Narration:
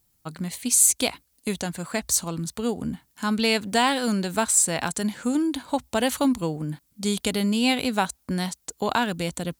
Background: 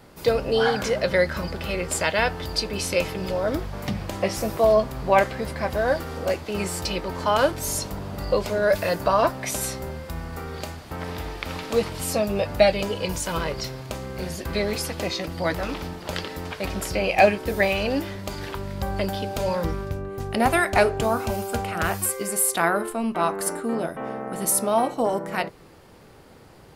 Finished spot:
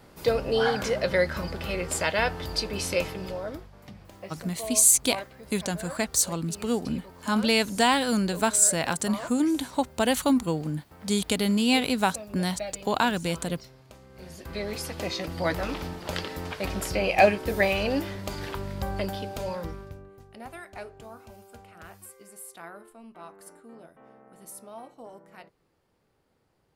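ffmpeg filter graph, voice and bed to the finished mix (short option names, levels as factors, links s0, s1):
-filter_complex "[0:a]adelay=4050,volume=0.944[s0];[1:a]volume=4.47,afade=t=out:st=2.93:d=0.77:silence=0.177828,afade=t=in:st=14.09:d=1.29:silence=0.158489,afade=t=out:st=18.6:d=1.67:silence=0.1[s1];[s0][s1]amix=inputs=2:normalize=0"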